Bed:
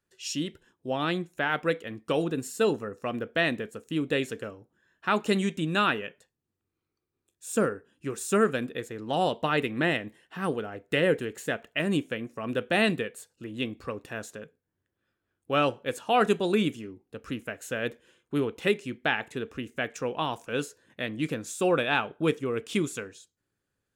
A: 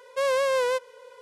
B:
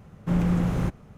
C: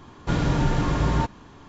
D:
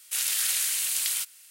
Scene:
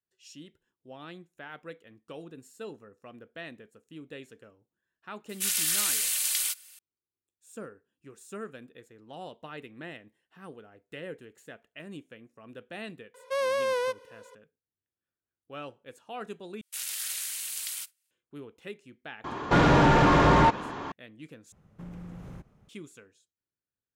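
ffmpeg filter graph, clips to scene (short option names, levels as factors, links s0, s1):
-filter_complex "[4:a]asplit=2[s0][s1];[0:a]volume=0.15[s2];[s0]aecho=1:1:3.4:0.5[s3];[1:a]bandreject=f=7300:w=7.3[s4];[s1]agate=range=0.0224:threshold=0.00891:ratio=3:release=100:detection=peak[s5];[3:a]asplit=2[s6][s7];[s7]highpass=f=720:p=1,volume=17.8,asoftclip=type=tanh:threshold=0.376[s8];[s6][s8]amix=inputs=2:normalize=0,lowpass=f=1200:p=1,volume=0.501[s9];[2:a]acompressor=threshold=0.0398:ratio=3:attack=5.3:release=147:knee=1:detection=peak[s10];[s2]asplit=3[s11][s12][s13];[s11]atrim=end=16.614[s14];[s5]atrim=end=1.5,asetpts=PTS-STARTPTS,volume=0.398[s15];[s12]atrim=start=18.106:end=21.524[s16];[s10]atrim=end=1.17,asetpts=PTS-STARTPTS,volume=0.224[s17];[s13]atrim=start=22.686[s18];[s3]atrim=end=1.5,asetpts=PTS-STARTPTS,volume=0.841,afade=t=in:d=0.004:c=hsin,afade=t=out:st=1.496:d=0.004:c=hsin,adelay=233289S[s19];[s4]atrim=end=1.21,asetpts=PTS-STARTPTS,volume=0.631,afade=t=in:d=0.004:c=hsin,afade=t=out:st=1.206:d=0.004:c=hsin,adelay=13140[s20];[s9]atrim=end=1.68,asetpts=PTS-STARTPTS,volume=0.891,afade=t=in:d=0.004:c=hsin,afade=t=out:st=1.676:d=0.004:c=hsin,adelay=848484S[s21];[s14][s15]acrossfade=d=0.004:c1=hsin:c2=hsin[s22];[s22][s16]acrossfade=d=0.004:c1=hsin:c2=hsin[s23];[s23][s17]acrossfade=d=0.004:c1=hsin:c2=hsin[s24];[s24][s18]acrossfade=d=0.004:c1=hsin:c2=hsin[s25];[s25][s19][s20][s21]amix=inputs=4:normalize=0"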